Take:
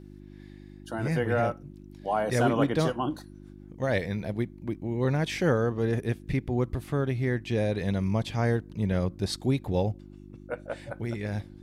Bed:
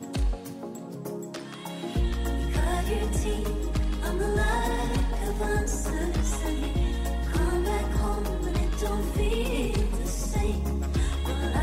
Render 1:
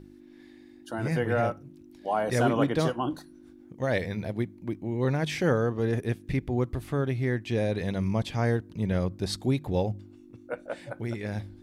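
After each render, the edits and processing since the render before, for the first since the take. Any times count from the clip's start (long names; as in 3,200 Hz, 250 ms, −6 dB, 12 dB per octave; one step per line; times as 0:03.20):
hum removal 50 Hz, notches 4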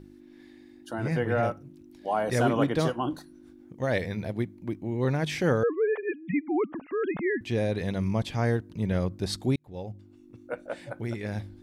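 0:00.93–0:01.43: high-shelf EQ 6,900 Hz −9 dB
0:05.63–0:07.41: three sine waves on the formant tracks
0:09.56–0:10.42: fade in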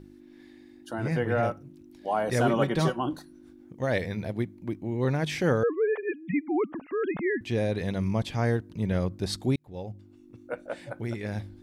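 0:02.48–0:02.99: comb filter 5.3 ms, depth 60%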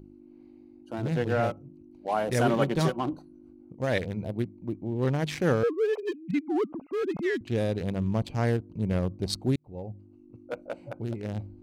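adaptive Wiener filter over 25 samples
high-shelf EQ 3,600 Hz +6.5 dB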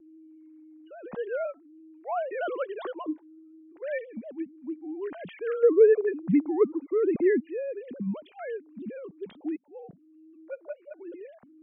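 three sine waves on the formant tracks
pitch vibrato 0.58 Hz 7 cents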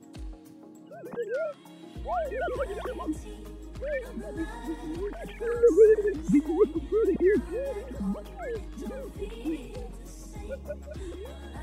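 mix in bed −14.5 dB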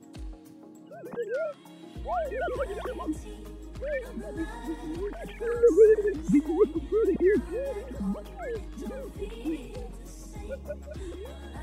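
no processing that can be heard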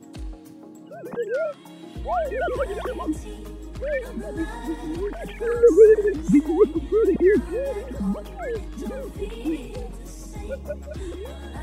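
level +5.5 dB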